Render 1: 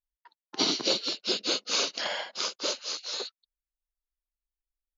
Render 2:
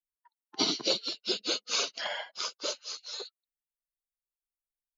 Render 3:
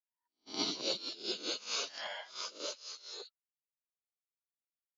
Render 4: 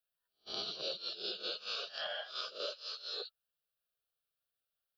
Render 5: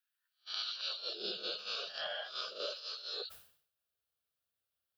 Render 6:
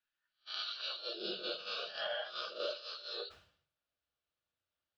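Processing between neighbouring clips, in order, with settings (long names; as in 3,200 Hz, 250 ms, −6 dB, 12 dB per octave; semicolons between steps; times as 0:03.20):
spectral dynamics exaggerated over time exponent 1.5
peak hold with a rise ahead of every peak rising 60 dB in 0.38 s; noise gate −46 dBFS, range −20 dB; level −8.5 dB
downward compressor 10 to 1, threshold −42 dBFS, peak gain reduction 12.5 dB; phaser with its sweep stopped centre 1,400 Hz, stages 8; level +8.5 dB
high-pass filter sweep 1,600 Hz → 70 Hz, 0:00.85–0:01.47; level that may fall only so fast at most 99 dB per second
high-frequency loss of the air 160 metres; convolution reverb RT60 0.25 s, pre-delay 3 ms, DRR 6 dB; level +2 dB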